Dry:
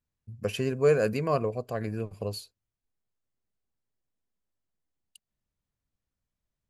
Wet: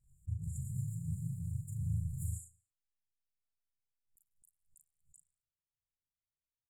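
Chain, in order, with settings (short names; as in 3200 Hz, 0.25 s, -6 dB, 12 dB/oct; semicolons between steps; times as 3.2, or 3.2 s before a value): block floating point 5-bit; gate with hold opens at -49 dBFS; low shelf 130 Hz -8.5 dB; limiter -30.5 dBFS, peak gain reduction 17 dB; compressor, threshold -37 dBFS, peak gain reduction 3.5 dB; harmoniser -5 st 0 dB; air absorption 68 m; feedback echo 73 ms, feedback 43%, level -20.5 dB; echoes that change speed 0.178 s, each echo +2 st, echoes 3; brick-wall FIR band-stop 170–6900 Hz; doubler 37 ms -3.5 dB; backwards sustainer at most 140 dB/s; gain +4.5 dB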